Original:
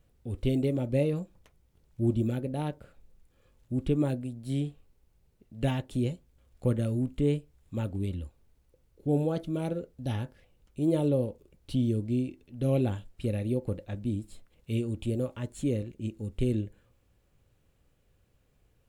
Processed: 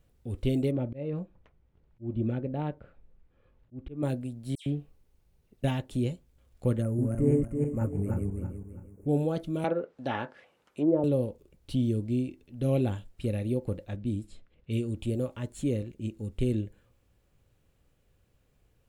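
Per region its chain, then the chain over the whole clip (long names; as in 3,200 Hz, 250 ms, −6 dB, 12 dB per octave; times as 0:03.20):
0:00.71–0:04.03: low-pass filter 2,300 Hz + volume swells 273 ms
0:04.55–0:05.64: notch filter 7,500 Hz, Q 25 + all-pass dispersion lows, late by 111 ms, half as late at 2,800 Hz
0:06.82–0:09.07: feedback delay that plays each chunk backwards 165 ms, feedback 56%, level −1 dB + Butterworth band-reject 3,600 Hz, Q 0.68
0:09.64–0:11.04: high-pass filter 210 Hz + treble cut that deepens with the level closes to 520 Hz, closed at −26 dBFS + parametric band 1,200 Hz +12.5 dB 2.4 octaves
0:13.96–0:14.96: low-pass that shuts in the quiet parts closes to 2,200 Hz, open at −28 dBFS + parametric band 900 Hz −4.5 dB 0.76 octaves
whole clip: no processing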